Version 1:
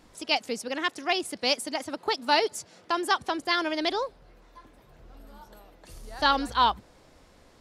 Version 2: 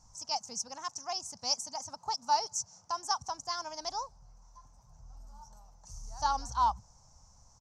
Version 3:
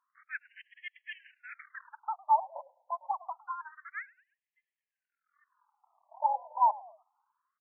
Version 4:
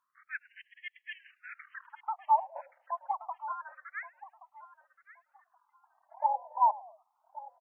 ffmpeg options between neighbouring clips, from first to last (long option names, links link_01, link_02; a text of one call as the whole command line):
ffmpeg -i in.wav -af "firequalizer=gain_entry='entry(120,0);entry(330,-27);entry(870,-2);entry(1800,-23);entry(3600,-22);entry(5900,11);entry(10000,-16)':delay=0.05:min_phase=1" out.wav
ffmpeg -i in.wav -filter_complex "[0:a]aeval=exprs='0.168*(cos(1*acos(clip(val(0)/0.168,-1,1)))-cos(1*PI/2))+0.0668*(cos(5*acos(clip(val(0)/0.168,-1,1)))-cos(5*PI/2))+0.0596*(cos(7*acos(clip(val(0)/0.168,-1,1)))-cos(7*PI/2))+0.0473*(cos(8*acos(clip(val(0)/0.168,-1,1)))-cos(8*PI/2))':channel_layout=same,asplit=4[link_01][link_02][link_03][link_04];[link_02]adelay=105,afreqshift=-110,volume=-22dB[link_05];[link_03]adelay=210,afreqshift=-220,volume=-28.4dB[link_06];[link_04]adelay=315,afreqshift=-330,volume=-34.8dB[link_07];[link_01][link_05][link_06][link_07]amix=inputs=4:normalize=0,afftfilt=real='re*between(b*sr/1024,720*pow(2400/720,0.5+0.5*sin(2*PI*0.27*pts/sr))/1.41,720*pow(2400/720,0.5+0.5*sin(2*PI*0.27*pts/sr))*1.41)':imag='im*between(b*sr/1024,720*pow(2400/720,0.5+0.5*sin(2*PI*0.27*pts/sr))/1.41,720*pow(2400/720,0.5+0.5*sin(2*PI*0.27*pts/sr))*1.41)':win_size=1024:overlap=0.75" out.wav
ffmpeg -i in.wav -af "aecho=1:1:1125|2250:0.15|0.0329" out.wav